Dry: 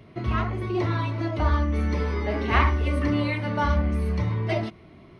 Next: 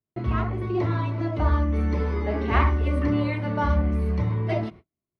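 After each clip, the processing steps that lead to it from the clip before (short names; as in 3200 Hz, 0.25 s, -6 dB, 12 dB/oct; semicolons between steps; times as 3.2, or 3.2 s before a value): gate -42 dBFS, range -43 dB; high shelf 2000 Hz -9 dB; gain +1 dB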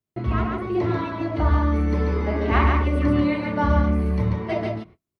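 echo 0.14 s -3.5 dB; gain +1.5 dB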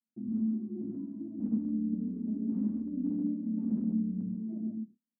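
wrapped overs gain 12.5 dB; Butterworth band-pass 230 Hz, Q 3.7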